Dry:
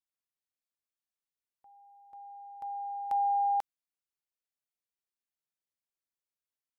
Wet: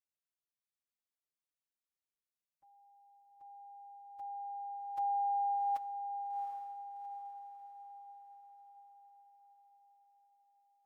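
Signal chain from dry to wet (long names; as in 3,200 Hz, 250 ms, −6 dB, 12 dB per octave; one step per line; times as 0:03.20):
feedback delay with all-pass diffusion 462 ms, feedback 47%, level −7 dB
phase-vocoder stretch with locked phases 1.6×
level −6.5 dB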